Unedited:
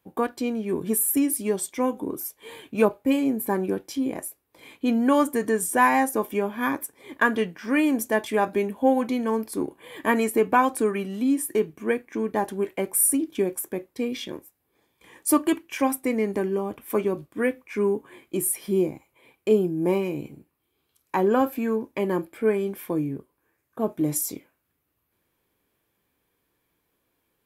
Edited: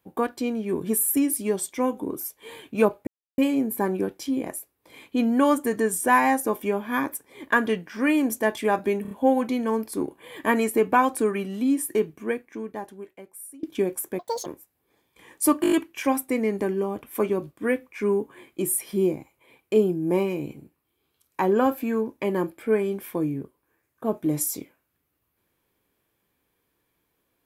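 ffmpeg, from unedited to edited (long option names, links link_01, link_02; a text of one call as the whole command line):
ffmpeg -i in.wav -filter_complex "[0:a]asplit=13[link_01][link_02][link_03][link_04][link_05][link_06][link_07][link_08][link_09][link_10][link_11][link_12][link_13];[link_01]atrim=end=3.07,asetpts=PTS-STARTPTS,afade=type=out:start_time=3.066:duration=0.004:curve=hsin,apad=pad_dur=0.31[link_14];[link_02]atrim=start=3.07:end=8.742,asetpts=PTS-STARTPTS,afade=type=in:duration=0.004:curve=hsin[link_15];[link_03]atrim=start=8.708:end=8.742[link_16];[link_04]atrim=start=8.708:end=8.742[link_17];[link_05]atrim=start=8.708:end=13.23,asetpts=PTS-STARTPTS,afade=type=out:start_time=2.942:duration=1.58:curve=qua:silence=0.0749894[link_18];[link_06]atrim=start=13.23:end=13.794,asetpts=PTS-STARTPTS,afade=type=in:duration=0.004:curve=hsin:silence=0.0749894[link_19];[link_07]atrim=start=13.79:end=14.31,asetpts=PTS-STARTPTS,asetrate=84672,aresample=44100[link_20];[link_08]atrim=start=14.306:end=15.492[link_21];[link_09]atrim=start=15.468:end=15.492[link_22];[link_10]atrim=start=15.468:end=15.492[link_23];[link_11]atrim=start=15.468:end=15.492[link_24];[link_12]atrim=start=15.468:end=15.492[link_25];[link_13]atrim=start=15.468[link_26];[link_14][link_15]concat=n=2:v=0:a=1[link_27];[link_27][link_16]acrossfade=duration=0.004:curve1=hsin:curve2=hsin[link_28];[link_28][link_17]acrossfade=duration=0.004:curve1=hsin:curve2=hsin[link_29];[link_18][link_19]concat=n=2:v=0:a=1[link_30];[link_29][link_30]acrossfade=duration=0.004:curve1=hsin:curve2=hsin[link_31];[link_31][link_20]acrossfade=duration=0.004:curve1=hsin:curve2=hsin[link_32];[link_32][link_21]acrossfade=duration=0.004:curve1=hsin:curve2=hsin[link_33];[link_33][link_22]acrossfade=duration=0.004:curve1=hsin:curve2=hsin[link_34];[link_34][link_23]acrossfade=duration=0.004:curve1=hsin:curve2=hsin[link_35];[link_35][link_24]acrossfade=duration=0.004:curve1=hsin:curve2=hsin[link_36];[link_36][link_25]acrossfade=duration=0.004:curve1=hsin:curve2=hsin[link_37];[link_37][link_26]acrossfade=duration=0.004:curve1=hsin:curve2=hsin" out.wav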